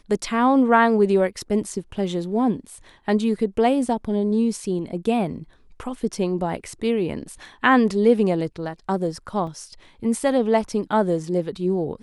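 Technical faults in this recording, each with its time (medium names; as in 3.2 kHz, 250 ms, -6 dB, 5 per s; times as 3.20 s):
9.47 s: dropout 3.5 ms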